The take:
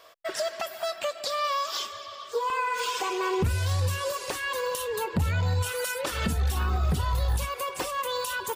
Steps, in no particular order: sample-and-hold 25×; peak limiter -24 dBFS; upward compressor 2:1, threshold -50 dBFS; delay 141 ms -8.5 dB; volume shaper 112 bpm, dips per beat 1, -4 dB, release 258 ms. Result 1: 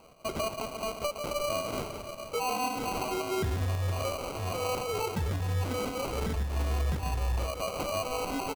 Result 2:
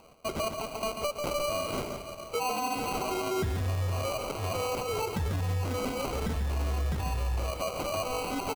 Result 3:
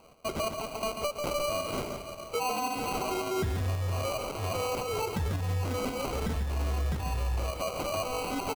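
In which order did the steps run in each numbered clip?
peak limiter > delay > volume shaper > upward compressor > sample-and-hold; sample-and-hold > upward compressor > delay > volume shaper > peak limiter; upward compressor > sample-and-hold > delay > peak limiter > volume shaper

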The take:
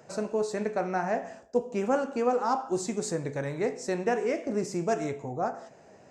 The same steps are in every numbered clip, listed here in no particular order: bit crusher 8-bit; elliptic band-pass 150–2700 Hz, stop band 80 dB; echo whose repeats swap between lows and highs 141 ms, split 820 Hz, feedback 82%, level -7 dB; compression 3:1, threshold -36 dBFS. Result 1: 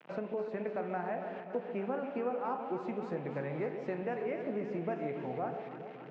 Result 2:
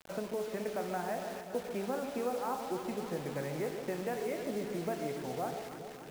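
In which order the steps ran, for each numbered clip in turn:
bit crusher > elliptic band-pass > compression > echo whose repeats swap between lows and highs; compression > elliptic band-pass > bit crusher > echo whose repeats swap between lows and highs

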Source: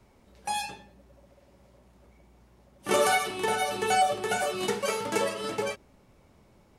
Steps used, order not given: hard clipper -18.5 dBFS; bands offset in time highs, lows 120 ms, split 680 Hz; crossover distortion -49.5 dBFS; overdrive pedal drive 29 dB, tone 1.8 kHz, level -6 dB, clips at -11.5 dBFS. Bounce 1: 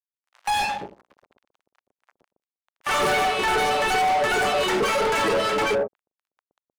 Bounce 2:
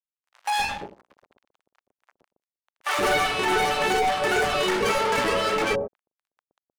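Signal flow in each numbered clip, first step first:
crossover distortion > bands offset in time > overdrive pedal > hard clipper; crossover distortion > overdrive pedal > hard clipper > bands offset in time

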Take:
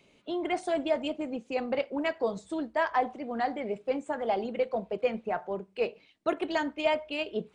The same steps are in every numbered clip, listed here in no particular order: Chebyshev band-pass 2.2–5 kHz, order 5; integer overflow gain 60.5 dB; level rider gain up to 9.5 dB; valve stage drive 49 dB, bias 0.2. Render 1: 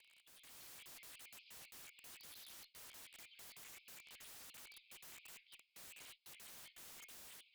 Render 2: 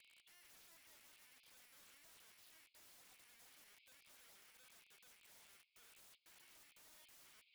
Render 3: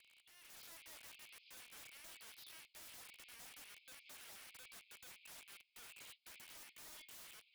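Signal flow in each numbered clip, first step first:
Chebyshev band-pass > integer overflow > valve stage > level rider; level rider > valve stage > Chebyshev band-pass > integer overflow; valve stage > Chebyshev band-pass > integer overflow > level rider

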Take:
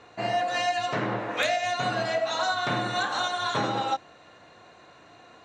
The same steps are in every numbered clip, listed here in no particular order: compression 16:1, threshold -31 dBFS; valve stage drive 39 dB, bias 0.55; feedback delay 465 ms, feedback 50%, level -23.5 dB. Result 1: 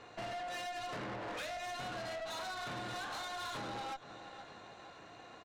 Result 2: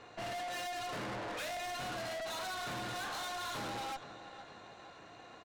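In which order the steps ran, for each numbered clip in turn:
feedback delay > compression > valve stage; feedback delay > valve stage > compression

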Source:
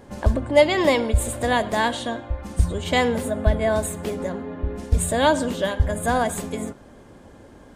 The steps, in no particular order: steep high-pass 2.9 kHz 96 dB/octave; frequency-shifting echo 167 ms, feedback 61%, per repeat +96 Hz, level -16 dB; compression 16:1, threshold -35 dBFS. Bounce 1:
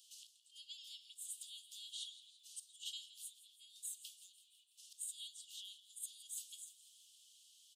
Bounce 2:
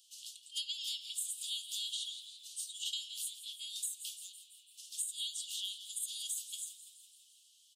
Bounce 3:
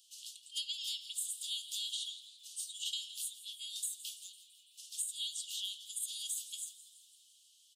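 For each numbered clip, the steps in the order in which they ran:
compression > frequency-shifting echo > steep high-pass; frequency-shifting echo > steep high-pass > compression; steep high-pass > compression > frequency-shifting echo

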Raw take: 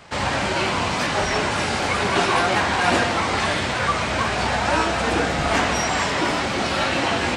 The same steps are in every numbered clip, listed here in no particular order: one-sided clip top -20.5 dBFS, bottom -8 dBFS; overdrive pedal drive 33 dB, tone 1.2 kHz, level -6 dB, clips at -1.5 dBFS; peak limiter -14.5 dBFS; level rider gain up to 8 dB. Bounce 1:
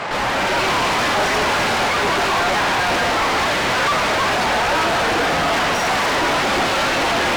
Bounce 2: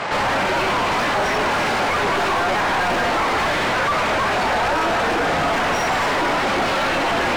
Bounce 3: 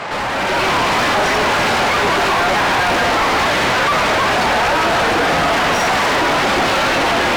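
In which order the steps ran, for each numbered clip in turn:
overdrive pedal > level rider > one-sided clip > peak limiter; one-sided clip > overdrive pedal > level rider > peak limiter; overdrive pedal > peak limiter > level rider > one-sided clip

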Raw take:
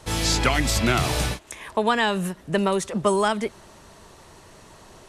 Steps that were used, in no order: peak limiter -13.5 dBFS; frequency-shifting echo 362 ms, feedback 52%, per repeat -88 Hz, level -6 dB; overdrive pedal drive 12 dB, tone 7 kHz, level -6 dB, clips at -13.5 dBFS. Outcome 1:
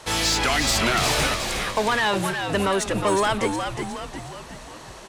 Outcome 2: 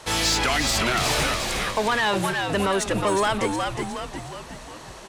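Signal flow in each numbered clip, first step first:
overdrive pedal > peak limiter > frequency-shifting echo; overdrive pedal > frequency-shifting echo > peak limiter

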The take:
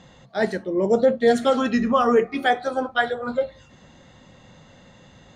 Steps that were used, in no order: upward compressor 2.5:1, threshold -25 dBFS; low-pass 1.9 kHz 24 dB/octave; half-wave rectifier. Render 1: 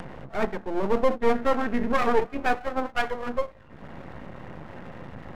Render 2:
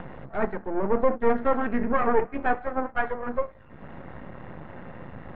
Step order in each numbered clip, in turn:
low-pass > half-wave rectifier > upward compressor; half-wave rectifier > upward compressor > low-pass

